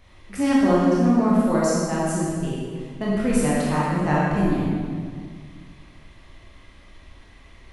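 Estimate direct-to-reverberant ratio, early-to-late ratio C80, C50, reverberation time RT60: −7.0 dB, −0.5 dB, −3.0 dB, 1.9 s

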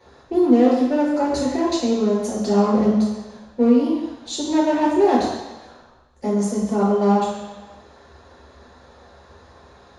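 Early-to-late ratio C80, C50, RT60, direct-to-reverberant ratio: 4.0 dB, 1.5 dB, 1.1 s, −6.5 dB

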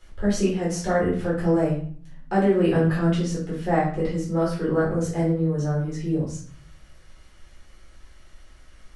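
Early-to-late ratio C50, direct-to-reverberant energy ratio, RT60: 4.5 dB, −7.5 dB, 0.50 s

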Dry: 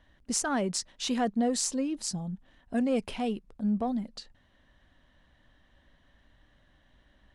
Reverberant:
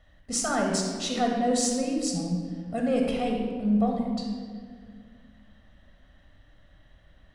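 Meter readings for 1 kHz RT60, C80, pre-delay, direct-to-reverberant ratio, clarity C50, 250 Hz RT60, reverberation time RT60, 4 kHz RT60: 1.6 s, 4.0 dB, 11 ms, 0.5 dB, 2.0 dB, 2.7 s, 1.9 s, 1.2 s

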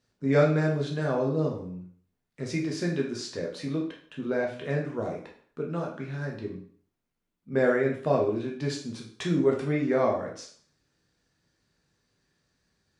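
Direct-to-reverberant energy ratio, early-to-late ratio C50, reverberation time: −1.5 dB, 6.5 dB, 0.50 s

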